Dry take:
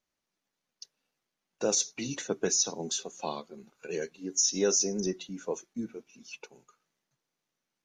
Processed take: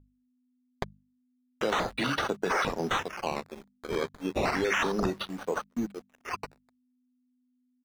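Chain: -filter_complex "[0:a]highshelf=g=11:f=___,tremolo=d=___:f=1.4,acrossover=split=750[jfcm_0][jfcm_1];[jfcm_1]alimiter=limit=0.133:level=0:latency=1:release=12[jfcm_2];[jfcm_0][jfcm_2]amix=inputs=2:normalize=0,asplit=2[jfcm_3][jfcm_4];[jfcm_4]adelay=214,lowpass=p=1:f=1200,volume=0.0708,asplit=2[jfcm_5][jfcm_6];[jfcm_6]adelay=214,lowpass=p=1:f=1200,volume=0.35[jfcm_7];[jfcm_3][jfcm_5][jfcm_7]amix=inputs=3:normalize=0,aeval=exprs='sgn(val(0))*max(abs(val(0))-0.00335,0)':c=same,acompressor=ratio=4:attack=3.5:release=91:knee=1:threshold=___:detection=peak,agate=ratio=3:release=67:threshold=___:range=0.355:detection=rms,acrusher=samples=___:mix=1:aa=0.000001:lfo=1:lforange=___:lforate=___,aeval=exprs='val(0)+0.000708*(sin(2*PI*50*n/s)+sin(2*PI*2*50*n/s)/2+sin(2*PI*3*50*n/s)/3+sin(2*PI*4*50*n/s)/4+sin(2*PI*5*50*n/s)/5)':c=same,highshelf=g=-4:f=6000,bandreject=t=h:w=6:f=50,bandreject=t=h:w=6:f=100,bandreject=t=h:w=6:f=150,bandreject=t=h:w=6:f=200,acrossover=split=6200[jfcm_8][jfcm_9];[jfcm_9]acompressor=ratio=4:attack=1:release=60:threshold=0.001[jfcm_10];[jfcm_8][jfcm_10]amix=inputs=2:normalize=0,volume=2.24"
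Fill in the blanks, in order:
2600, 0.29, 0.0282, 0.00112, 11, 11, 0.32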